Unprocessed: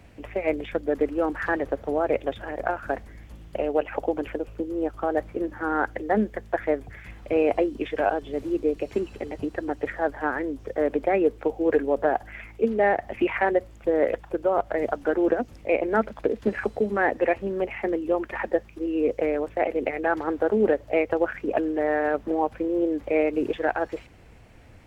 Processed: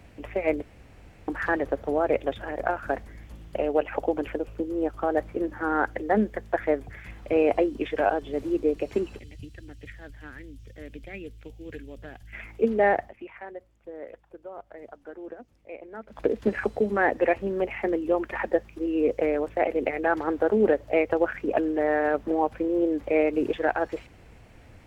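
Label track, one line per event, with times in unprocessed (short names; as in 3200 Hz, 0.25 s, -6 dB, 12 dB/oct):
0.620000	1.280000	room tone
9.190000	12.330000	EQ curve 120 Hz 0 dB, 390 Hz -20 dB, 870 Hz -27 dB, 3000 Hz -2 dB
12.990000	16.210000	dip -18 dB, fades 0.14 s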